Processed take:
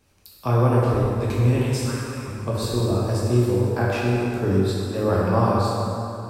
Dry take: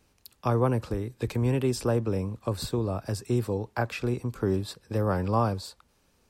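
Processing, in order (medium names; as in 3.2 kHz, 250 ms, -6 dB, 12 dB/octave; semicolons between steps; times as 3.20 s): 1.62–2.28 s: high-pass 1.1 kHz 24 dB/octave; plate-style reverb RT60 2.9 s, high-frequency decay 0.65×, DRR -6 dB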